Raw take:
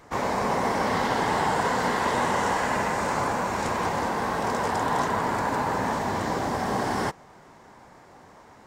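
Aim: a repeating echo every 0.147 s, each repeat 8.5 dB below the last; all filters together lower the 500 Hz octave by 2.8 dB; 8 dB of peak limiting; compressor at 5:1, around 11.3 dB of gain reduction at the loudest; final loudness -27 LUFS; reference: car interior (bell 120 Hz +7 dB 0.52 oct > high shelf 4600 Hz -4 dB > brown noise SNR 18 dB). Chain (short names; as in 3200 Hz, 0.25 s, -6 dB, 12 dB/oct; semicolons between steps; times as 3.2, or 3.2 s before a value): bell 500 Hz -3.5 dB; compressor 5:1, threshold -35 dBFS; limiter -32 dBFS; bell 120 Hz +7 dB 0.52 oct; high shelf 4600 Hz -4 dB; feedback echo 0.147 s, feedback 38%, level -8.5 dB; brown noise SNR 18 dB; gain +13 dB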